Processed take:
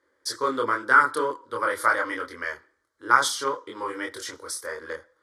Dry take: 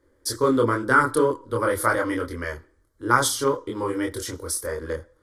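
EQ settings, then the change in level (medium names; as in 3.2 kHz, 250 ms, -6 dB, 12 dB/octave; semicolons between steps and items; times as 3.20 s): band-pass filter 2.3 kHz, Q 0.73; peaking EQ 2.7 kHz -5 dB 0.83 oct; +4.5 dB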